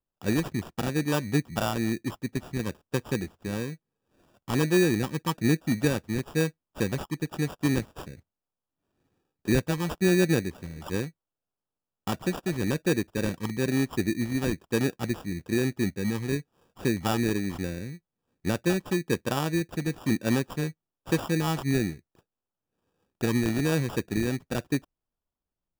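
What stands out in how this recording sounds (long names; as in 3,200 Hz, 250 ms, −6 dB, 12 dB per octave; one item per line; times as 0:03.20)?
phaser sweep stages 4, 1.1 Hz, lowest notch 650–2,000 Hz
aliases and images of a low sample rate 2,100 Hz, jitter 0%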